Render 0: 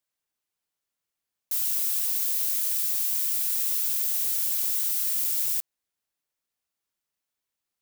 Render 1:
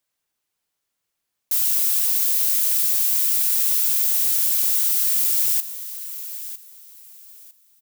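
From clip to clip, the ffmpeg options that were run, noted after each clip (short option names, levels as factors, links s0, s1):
-af "aecho=1:1:954|1908|2862:0.224|0.0537|0.0129,volume=2.11"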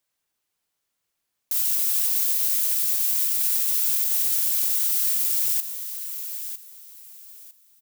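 -af "alimiter=limit=0.237:level=0:latency=1:release=50"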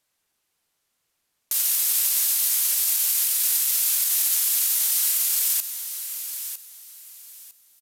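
-af "aresample=32000,aresample=44100,volume=1.88"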